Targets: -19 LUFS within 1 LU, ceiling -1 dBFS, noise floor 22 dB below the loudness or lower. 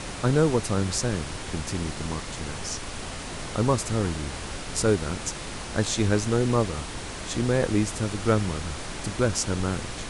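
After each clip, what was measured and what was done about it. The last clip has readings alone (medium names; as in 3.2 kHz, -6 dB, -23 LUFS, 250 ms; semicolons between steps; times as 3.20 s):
noise floor -36 dBFS; noise floor target -49 dBFS; loudness -27.0 LUFS; peak level -8.0 dBFS; loudness target -19.0 LUFS
-> noise print and reduce 13 dB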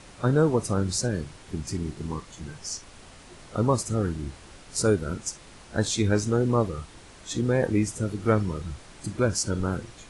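noise floor -49 dBFS; loudness -27.0 LUFS; peak level -8.0 dBFS; loudness target -19.0 LUFS
-> trim +8 dB; peak limiter -1 dBFS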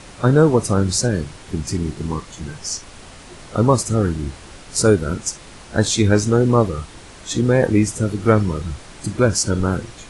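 loudness -19.0 LUFS; peak level -1.0 dBFS; noise floor -41 dBFS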